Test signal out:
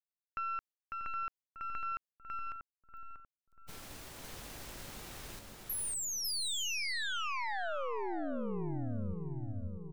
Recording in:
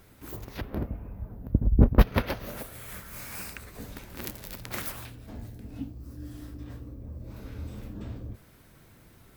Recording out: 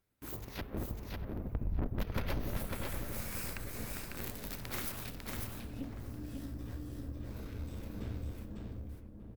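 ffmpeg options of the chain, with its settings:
-filter_complex "[0:a]agate=range=-24dB:threshold=-49dB:ratio=16:detection=peak,crystalizer=i=3:c=0,lowpass=f=2.7k:p=1,aeval=exprs='(tanh(20*val(0)+0.65)-tanh(0.65))/20':c=same,asplit=2[a][b];[b]adelay=639,lowpass=f=850:p=1,volume=-7.5dB,asplit=2[c][d];[d]adelay=639,lowpass=f=850:p=1,volume=0.49,asplit=2[e][f];[f]adelay=639,lowpass=f=850:p=1,volume=0.49,asplit=2[g][h];[h]adelay=639,lowpass=f=850:p=1,volume=0.49,asplit=2[i][j];[j]adelay=639,lowpass=f=850:p=1,volume=0.49,asplit=2[k][l];[l]adelay=639,lowpass=f=850:p=1,volume=0.49[m];[c][e][g][i][k][m]amix=inputs=6:normalize=0[n];[a][n]amix=inputs=2:normalize=0,acompressor=threshold=-43dB:ratio=1.5,asplit=2[o][p];[p]aecho=0:1:549:0.668[q];[o][q]amix=inputs=2:normalize=0,volume=1dB"

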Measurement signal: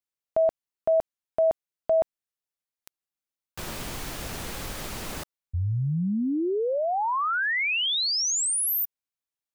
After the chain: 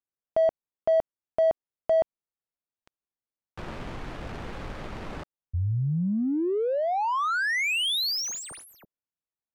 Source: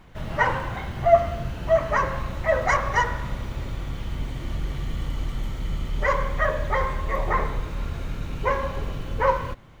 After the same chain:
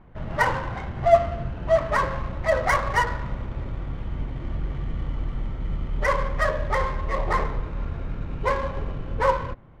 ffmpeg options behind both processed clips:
-af "adynamicsmooth=sensitivity=4:basefreq=1.5k"

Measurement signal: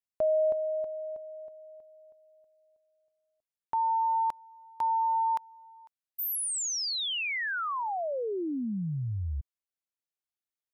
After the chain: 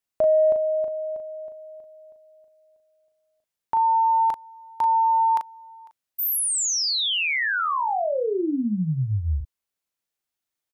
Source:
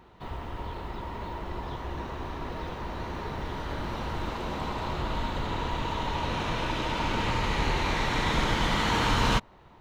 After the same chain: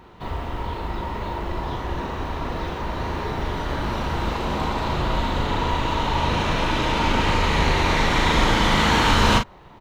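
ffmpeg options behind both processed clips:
-filter_complex "[0:a]acontrast=48,asplit=2[a][b];[b]adelay=38,volume=-6dB[c];[a][c]amix=inputs=2:normalize=0,volume=1dB"

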